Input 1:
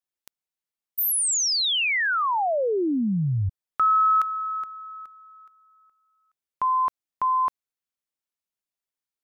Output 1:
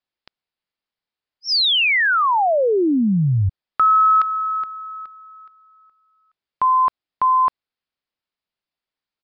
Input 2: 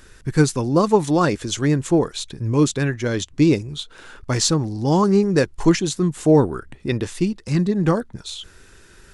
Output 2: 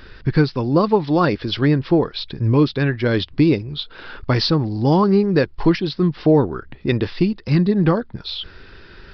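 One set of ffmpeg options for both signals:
-af "acompressor=threshold=-18dB:ratio=2.5:attack=5.5:release=989:knee=1:detection=rms,aresample=11025,aresample=44100,volume=6.5dB"

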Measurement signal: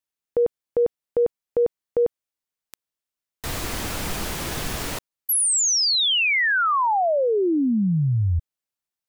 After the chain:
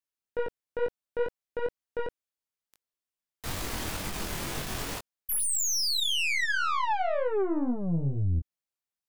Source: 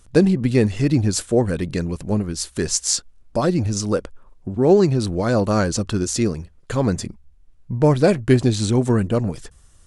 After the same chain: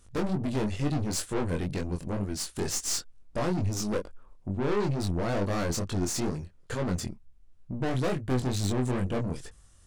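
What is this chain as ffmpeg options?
-af "aeval=exprs='(tanh(14.1*val(0)+0.5)-tanh(0.5))/14.1':c=same,flanger=delay=20:depth=4.1:speed=2.2"

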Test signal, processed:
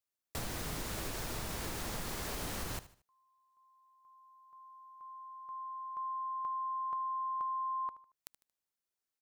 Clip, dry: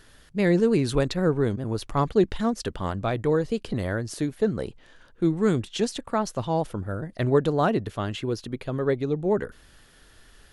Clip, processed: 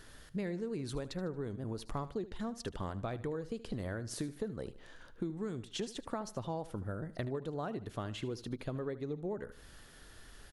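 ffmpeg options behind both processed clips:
-af "acompressor=threshold=-34dB:ratio=12,equalizer=f=2.7k:w=1.5:g=-2.5,aecho=1:1:76|152|228:0.158|0.0586|0.0217,volume=-1dB"

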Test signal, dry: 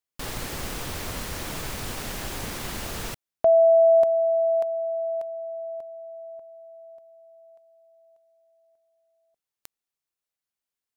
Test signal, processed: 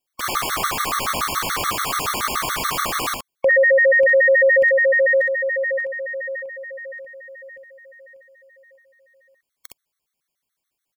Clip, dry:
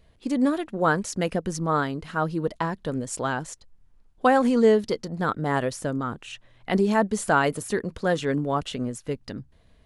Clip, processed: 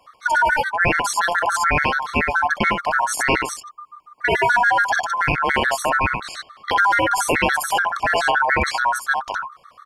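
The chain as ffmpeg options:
-filter_complex "[0:a]aeval=exprs='val(0)*sin(2*PI*1200*n/s)':c=same,asplit=2[a][b];[b]aecho=0:1:48|63:0.141|0.631[c];[a][c]amix=inputs=2:normalize=0,alimiter=level_in=17.5dB:limit=-1dB:release=50:level=0:latency=1,afftfilt=real='re*gt(sin(2*PI*7*pts/sr)*(1-2*mod(floor(b*sr/1024/1100),2)),0)':imag='im*gt(sin(2*PI*7*pts/sr)*(1-2*mod(floor(b*sr/1024/1100),2)),0)':win_size=1024:overlap=0.75,volume=-3.5dB"

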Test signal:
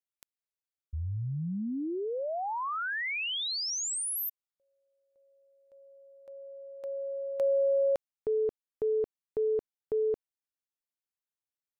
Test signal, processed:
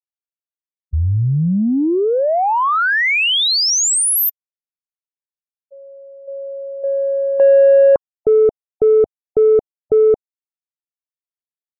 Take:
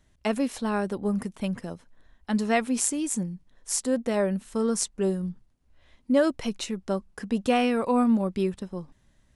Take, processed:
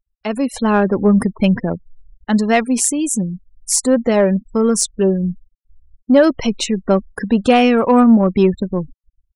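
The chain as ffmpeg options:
-filter_complex "[0:a]afftfilt=real='re*gte(hypot(re,im),0.0112)':imag='im*gte(hypot(re,im),0.0112)':win_size=1024:overlap=0.75,dynaudnorm=f=150:g=7:m=15.5dB,asplit=2[a][b];[b]asoftclip=type=tanh:threshold=-10.5dB,volume=-3.5dB[c];[a][c]amix=inputs=2:normalize=0,volume=-2dB"

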